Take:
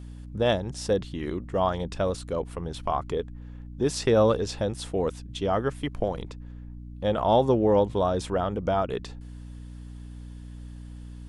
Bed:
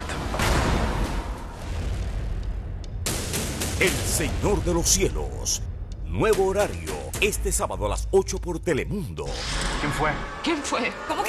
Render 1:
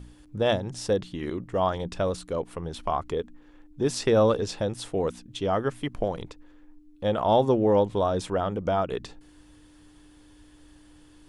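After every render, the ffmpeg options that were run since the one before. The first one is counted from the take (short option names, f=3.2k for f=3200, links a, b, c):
-af "bandreject=f=60:t=h:w=4,bandreject=f=120:t=h:w=4,bandreject=f=180:t=h:w=4,bandreject=f=240:t=h:w=4"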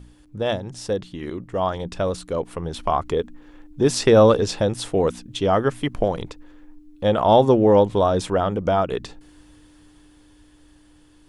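-af "dynaudnorm=f=440:g=11:m=8.5dB"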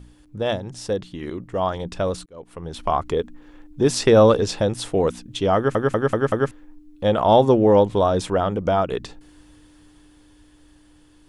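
-filter_complex "[0:a]asplit=7[a][b][c][d][e][f][g];[a]atrim=end=2.26,asetpts=PTS-STARTPTS,afade=t=out:st=2.256:d=0.004:c=hsin[h];[b]atrim=start=2.26:end=5.752,asetpts=PTS-STARTPTS,afade=t=in:d=0.64[i];[c]atrim=start=5.558:end=5.752[j];[d]atrim=start=5.558:end=5.752[k];[e]atrim=start=5.558:end=5.752[l];[f]atrim=start=5.558:end=5.752[m];[g]atrim=start=6.508[n];[h][i]concat=n=2:v=0:a=1[o];[o][j]acrossfade=d=0.004:c1=hsin:c2=hsin[p];[p][k]acrossfade=d=0.004:c1=hsin:c2=hsin[q];[q][l]acrossfade=d=0.004:c1=hsin:c2=hsin[r];[r][m]acrossfade=d=0.004:c1=hsin:c2=hsin[s];[s][n]acrossfade=d=0.004:c1=hsin:c2=hsin"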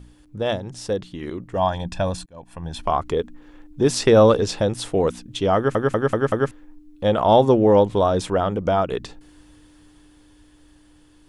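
-filter_complex "[0:a]asettb=1/sr,asplit=3[a][b][c];[a]atrim=end=1.564[d];[b]atrim=start=1.56:end=2.82,asetpts=PTS-STARTPTS,afade=t=in:d=0.004:c=qsin,afade=t=out:st=1.256:d=0.004:c=qsin,aecho=1:1:1.2:0.67,atrim=end_sample=55566[e];[c]atrim=start=2.816[f];[d][e]acrossfade=d=0.004:c1=hsin:c2=qsin[g];[g][f]acrossfade=d=0.004:c1=qsin:c2=hsin"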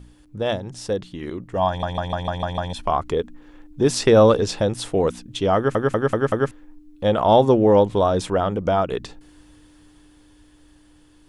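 -filter_complex "[0:a]asplit=8[a][b][c][d][e][f][g][h];[a]atrim=end=1.832[i];[b]atrim=start=1.678:end=1.832[j];[c]atrim=start=1.678:end=1.832[k];[d]atrim=start=1.678:end=1.832[l];[e]atrim=start=1.678:end=1.832[m];[f]atrim=start=1.678:end=1.832[n];[g]atrim=start=1.678:end=1.832[o];[h]atrim=start=2.728[p];[i][j]acrossfade=d=0.004:c1=hsin:c2=hsin[q];[q][k]acrossfade=d=0.004:c1=hsin:c2=hsin[r];[r][l]acrossfade=d=0.004:c1=hsin:c2=hsin[s];[s][m]acrossfade=d=0.004:c1=hsin:c2=hsin[t];[t][n]acrossfade=d=0.004:c1=hsin:c2=hsin[u];[u][o]acrossfade=d=0.004:c1=hsin:c2=hsin[v];[v][p]acrossfade=d=0.004:c1=hsin:c2=hsin"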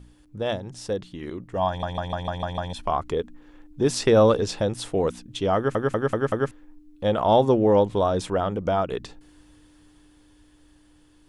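-af "volume=-3.5dB"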